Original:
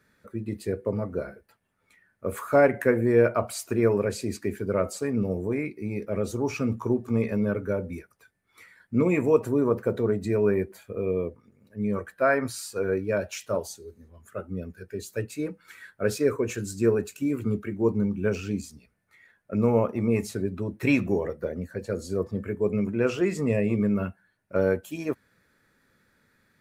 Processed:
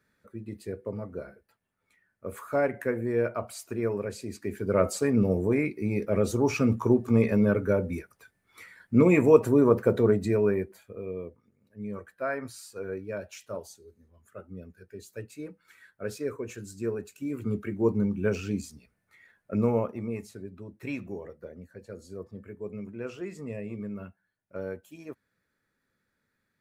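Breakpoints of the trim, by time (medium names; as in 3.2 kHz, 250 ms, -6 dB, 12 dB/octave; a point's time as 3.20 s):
4.33 s -7 dB
4.84 s +3 dB
10.10 s +3 dB
11.04 s -9 dB
17.12 s -9 dB
17.64 s -1 dB
19.57 s -1 dB
20.28 s -12.5 dB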